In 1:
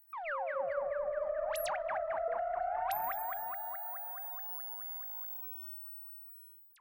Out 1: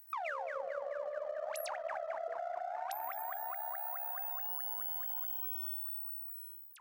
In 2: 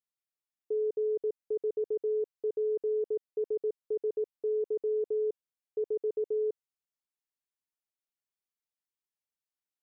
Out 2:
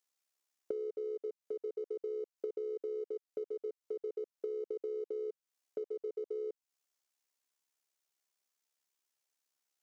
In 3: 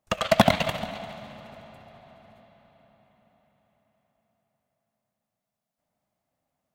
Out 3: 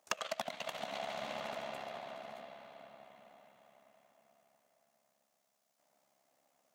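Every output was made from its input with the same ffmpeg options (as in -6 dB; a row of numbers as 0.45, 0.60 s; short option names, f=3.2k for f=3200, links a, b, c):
-filter_complex "[0:a]highpass=340,asplit=2[a][b];[b]aeval=exprs='sgn(val(0))*max(abs(val(0))-0.00501,0)':c=same,volume=-10.5dB[c];[a][c]amix=inputs=2:normalize=0,acompressor=threshold=-43dB:ratio=16,equalizer=f=6.3k:t=o:w=0.78:g=5,tremolo=f=68:d=0.571,volume=9dB"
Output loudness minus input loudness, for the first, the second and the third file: -1.0, -8.0, -18.5 LU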